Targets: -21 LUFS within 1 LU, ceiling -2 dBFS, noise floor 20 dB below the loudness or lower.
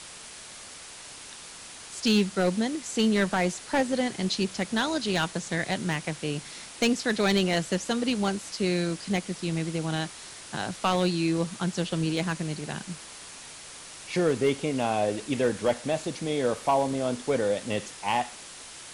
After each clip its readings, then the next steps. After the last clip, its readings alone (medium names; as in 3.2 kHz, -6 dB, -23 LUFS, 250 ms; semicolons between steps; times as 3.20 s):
clipped samples 0.3%; clipping level -16.0 dBFS; noise floor -44 dBFS; noise floor target -48 dBFS; loudness -27.5 LUFS; peak level -16.0 dBFS; loudness target -21.0 LUFS
-> clip repair -16 dBFS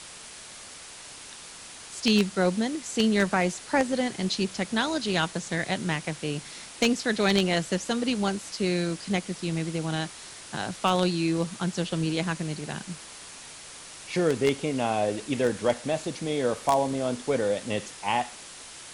clipped samples 0.0%; noise floor -44 dBFS; noise floor target -48 dBFS
-> noise print and reduce 6 dB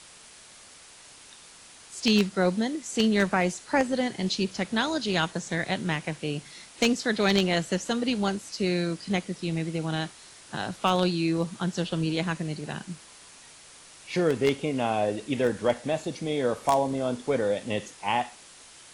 noise floor -50 dBFS; loudness -27.5 LUFS; peak level -7.0 dBFS; loudness target -21.0 LUFS
-> trim +6.5 dB; peak limiter -2 dBFS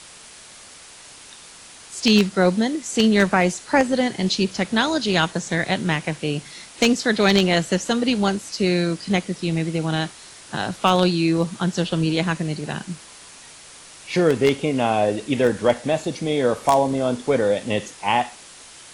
loudness -21.0 LUFS; peak level -2.0 dBFS; noise floor -44 dBFS